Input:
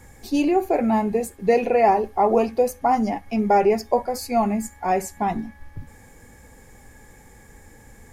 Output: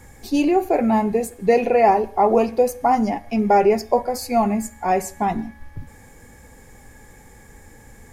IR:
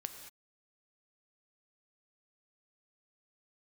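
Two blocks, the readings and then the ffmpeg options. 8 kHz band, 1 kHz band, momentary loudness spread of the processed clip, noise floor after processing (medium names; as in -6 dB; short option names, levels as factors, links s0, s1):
+2.0 dB, +2.0 dB, 8 LU, -47 dBFS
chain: -filter_complex "[0:a]asplit=2[s0][s1];[1:a]atrim=start_sample=2205,afade=t=out:st=0.23:d=0.01,atrim=end_sample=10584[s2];[s1][s2]afir=irnorm=-1:irlink=0,volume=0.355[s3];[s0][s3]amix=inputs=2:normalize=0"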